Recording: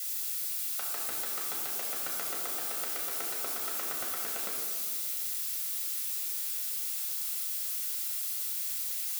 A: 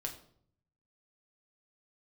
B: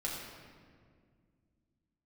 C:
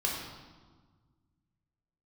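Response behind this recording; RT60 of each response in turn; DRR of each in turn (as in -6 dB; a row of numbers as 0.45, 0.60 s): B; 0.60, 2.0, 1.5 s; 1.5, -4.5, -3.0 dB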